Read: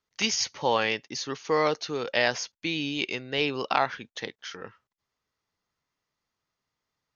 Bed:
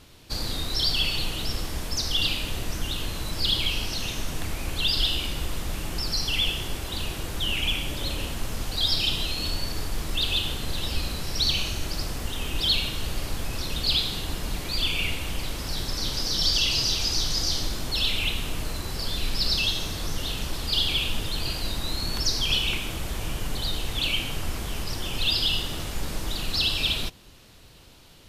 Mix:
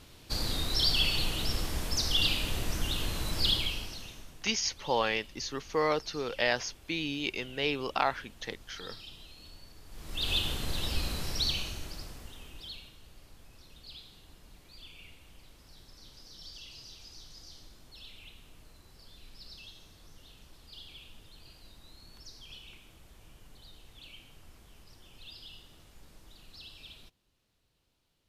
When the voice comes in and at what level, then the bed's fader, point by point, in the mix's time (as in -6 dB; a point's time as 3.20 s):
4.25 s, -4.0 dB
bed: 3.47 s -2.5 dB
4.44 s -23 dB
9.83 s -23 dB
10.30 s -4 dB
11.26 s -4 dB
13.00 s -25 dB